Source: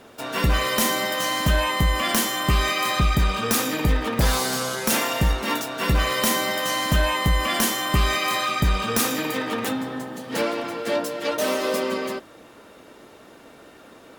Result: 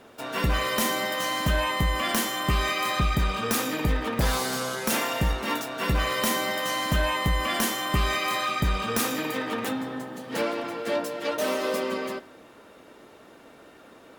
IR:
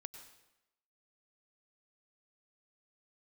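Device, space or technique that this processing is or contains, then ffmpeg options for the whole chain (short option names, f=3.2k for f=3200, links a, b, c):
filtered reverb send: -filter_complex "[0:a]asplit=2[a][b];[b]highpass=f=190:p=1,lowpass=4.1k[c];[1:a]atrim=start_sample=2205[d];[c][d]afir=irnorm=-1:irlink=0,volume=-5.5dB[e];[a][e]amix=inputs=2:normalize=0,volume=-5dB"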